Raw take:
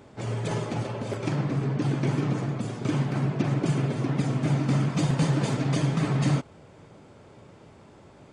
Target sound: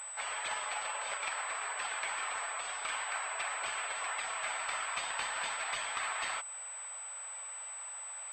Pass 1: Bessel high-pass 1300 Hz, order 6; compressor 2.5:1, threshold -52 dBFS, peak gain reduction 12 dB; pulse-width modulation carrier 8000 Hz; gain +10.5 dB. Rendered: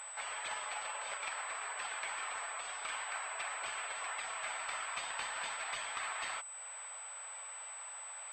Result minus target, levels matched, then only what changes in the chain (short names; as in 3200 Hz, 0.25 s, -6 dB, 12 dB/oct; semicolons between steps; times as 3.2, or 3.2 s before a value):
compressor: peak gain reduction +3.5 dB
change: compressor 2.5:1, threshold -46 dBFS, peak gain reduction 8.5 dB